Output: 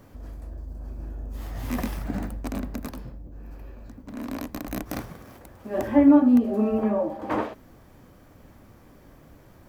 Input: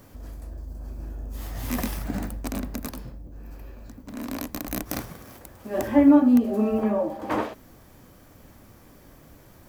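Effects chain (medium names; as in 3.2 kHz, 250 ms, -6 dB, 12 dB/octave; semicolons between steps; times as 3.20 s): treble shelf 3.8 kHz -8.5 dB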